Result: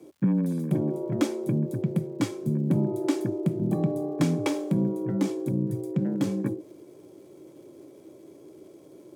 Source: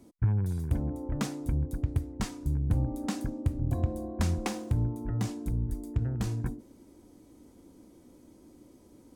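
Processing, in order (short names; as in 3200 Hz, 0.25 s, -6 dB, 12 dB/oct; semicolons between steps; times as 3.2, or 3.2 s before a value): small resonant body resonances 230/460/2200/3200 Hz, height 9 dB, ringing for 30 ms; crackle 210/s -55 dBFS; frequency shift +80 Hz; gain +1 dB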